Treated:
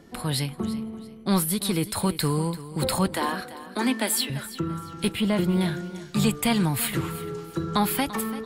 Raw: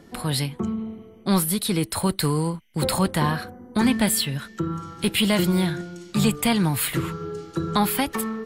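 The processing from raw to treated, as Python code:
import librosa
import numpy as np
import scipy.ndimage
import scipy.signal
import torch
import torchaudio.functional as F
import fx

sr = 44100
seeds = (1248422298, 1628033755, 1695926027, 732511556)

y = fx.steep_highpass(x, sr, hz=240.0, slope=48, at=(3.15, 4.3))
y = fx.high_shelf(y, sr, hz=2300.0, db=-12.0, at=(5.12, 5.61))
y = fx.echo_feedback(y, sr, ms=339, feedback_pct=28, wet_db=-15.0)
y = y * 10.0 ** (-2.0 / 20.0)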